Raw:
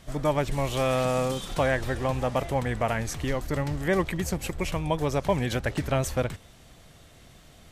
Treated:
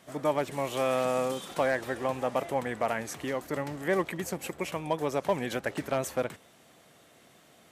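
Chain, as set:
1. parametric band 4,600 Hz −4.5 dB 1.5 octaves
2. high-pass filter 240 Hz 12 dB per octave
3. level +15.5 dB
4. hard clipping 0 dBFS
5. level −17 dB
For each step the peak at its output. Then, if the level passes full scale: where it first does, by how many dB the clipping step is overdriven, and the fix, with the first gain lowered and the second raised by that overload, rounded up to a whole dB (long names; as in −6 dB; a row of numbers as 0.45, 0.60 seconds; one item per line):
−12.0, −11.5, +4.0, 0.0, −17.0 dBFS
step 3, 4.0 dB
step 3 +11.5 dB, step 5 −13 dB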